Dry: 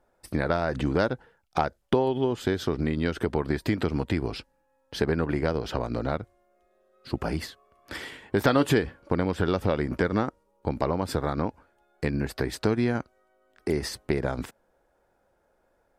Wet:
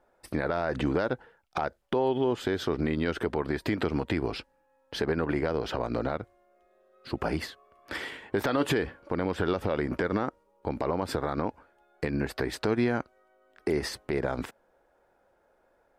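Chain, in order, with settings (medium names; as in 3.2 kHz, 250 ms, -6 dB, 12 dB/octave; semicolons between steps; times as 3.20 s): tone controls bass -6 dB, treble -6 dB; peak limiter -18.5 dBFS, peak gain reduction 11.5 dB; trim +2.5 dB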